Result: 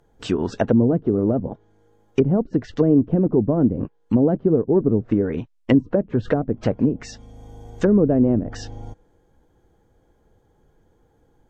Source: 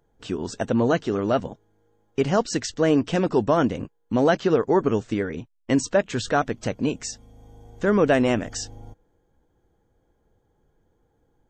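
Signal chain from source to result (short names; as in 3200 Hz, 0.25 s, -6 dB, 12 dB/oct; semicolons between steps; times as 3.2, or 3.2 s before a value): treble ducked by the level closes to 340 Hz, closed at -19 dBFS; gain +6.5 dB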